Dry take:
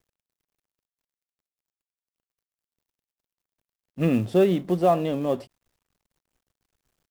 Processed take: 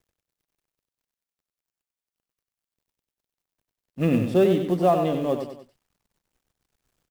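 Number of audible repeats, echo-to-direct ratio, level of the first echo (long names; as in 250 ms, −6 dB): 3, −6.0 dB, −7.0 dB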